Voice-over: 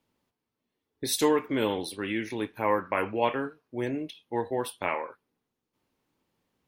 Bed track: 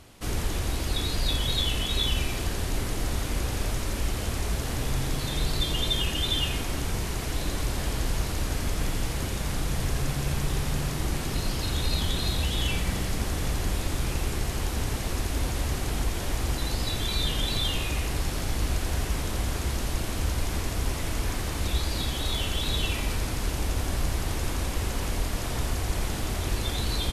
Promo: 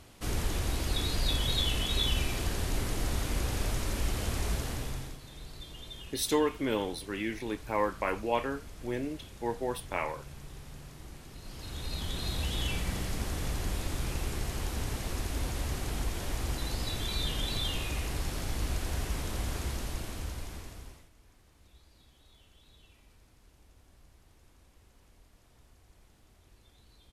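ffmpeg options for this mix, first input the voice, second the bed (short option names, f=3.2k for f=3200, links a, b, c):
-filter_complex "[0:a]adelay=5100,volume=-3.5dB[a];[1:a]volume=10.5dB,afade=t=out:st=4.51:d=0.68:silence=0.158489,afade=t=in:st=11.4:d=1.09:silence=0.211349,afade=t=out:st=19.59:d=1.5:silence=0.0446684[b];[a][b]amix=inputs=2:normalize=0"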